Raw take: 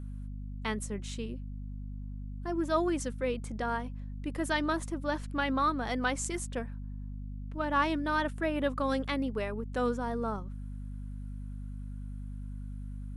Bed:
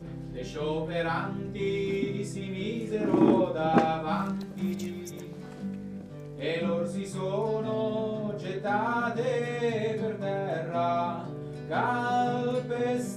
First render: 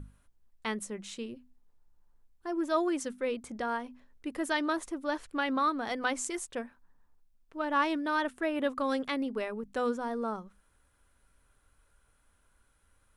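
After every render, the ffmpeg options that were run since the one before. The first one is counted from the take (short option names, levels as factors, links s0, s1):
-af "bandreject=f=50:t=h:w=6,bandreject=f=100:t=h:w=6,bandreject=f=150:t=h:w=6,bandreject=f=200:t=h:w=6,bandreject=f=250:t=h:w=6"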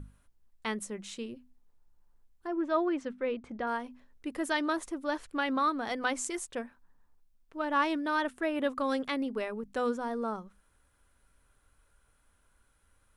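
-filter_complex "[0:a]asettb=1/sr,asplit=3[s0][s1][s2];[s0]atrim=end=2.474[s3];[s1]atrim=start=2.47:end=3.67,asetpts=PTS-STARTPTS,afade=t=in:d=0.004:c=qsin,afade=t=out:st=1.196:d=0.004:c=qsin,lowpass=2800[s4];[s2]atrim=start=3.666[s5];[s3][s4]acrossfade=d=0.004:c1=hsin:c2=qsin[s6];[s6][s5]acrossfade=d=0.004:c1=qsin:c2=hsin"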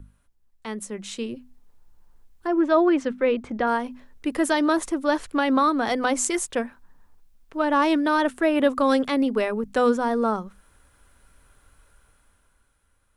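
-filter_complex "[0:a]acrossover=split=260|930|4900[s0][s1][s2][s3];[s2]alimiter=level_in=2.11:limit=0.0631:level=0:latency=1:release=129,volume=0.473[s4];[s0][s1][s4][s3]amix=inputs=4:normalize=0,dynaudnorm=f=100:g=21:m=3.55"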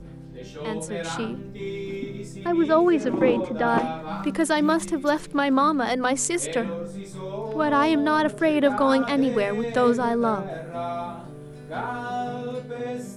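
-filter_complex "[1:a]volume=0.75[s0];[0:a][s0]amix=inputs=2:normalize=0"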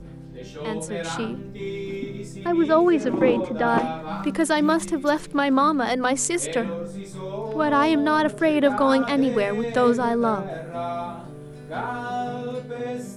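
-af "volume=1.12"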